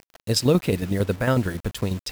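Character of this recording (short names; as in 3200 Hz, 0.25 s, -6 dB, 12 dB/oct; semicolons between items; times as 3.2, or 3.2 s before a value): tremolo saw down 11 Hz, depth 60%; a quantiser's noise floor 8-bit, dither none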